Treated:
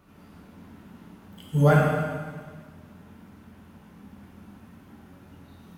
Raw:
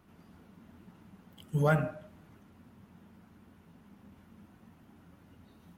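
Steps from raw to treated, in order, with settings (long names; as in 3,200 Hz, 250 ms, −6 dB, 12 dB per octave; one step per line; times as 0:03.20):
dense smooth reverb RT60 1.6 s, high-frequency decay 1×, DRR −3.5 dB
level +3.5 dB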